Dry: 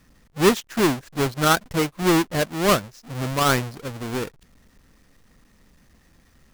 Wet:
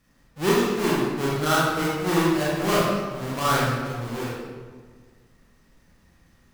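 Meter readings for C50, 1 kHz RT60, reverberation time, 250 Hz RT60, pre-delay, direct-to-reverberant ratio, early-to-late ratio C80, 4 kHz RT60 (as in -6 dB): -3.0 dB, 1.5 s, 1.6 s, 1.8 s, 25 ms, -7.5 dB, 0.5 dB, 1.0 s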